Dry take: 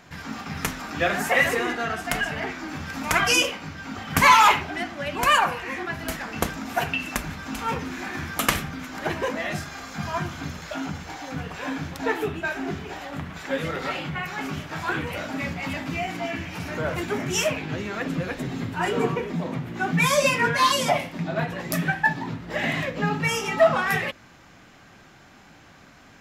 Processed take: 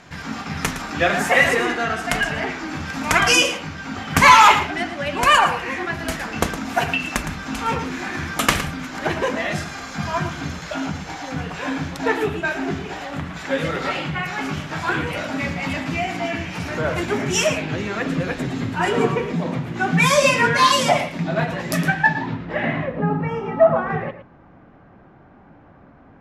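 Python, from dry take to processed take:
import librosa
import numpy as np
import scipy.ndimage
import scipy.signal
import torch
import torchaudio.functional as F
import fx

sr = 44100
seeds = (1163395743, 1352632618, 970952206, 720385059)

y = fx.filter_sweep_lowpass(x, sr, from_hz=10000.0, to_hz=960.0, start_s=21.8, end_s=22.97, q=0.72)
y = y + 10.0 ** (-11.5 / 20.0) * np.pad(y, (int(112 * sr / 1000.0), 0))[:len(y)]
y = y * 10.0 ** (4.5 / 20.0)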